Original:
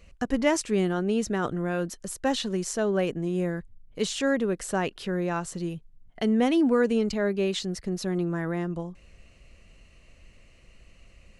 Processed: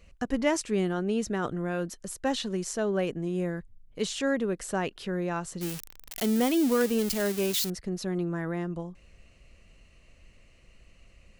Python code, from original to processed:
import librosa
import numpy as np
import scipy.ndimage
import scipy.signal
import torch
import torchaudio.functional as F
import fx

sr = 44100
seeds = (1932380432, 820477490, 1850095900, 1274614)

y = fx.crossing_spikes(x, sr, level_db=-19.0, at=(5.61, 7.7))
y = y * librosa.db_to_amplitude(-2.5)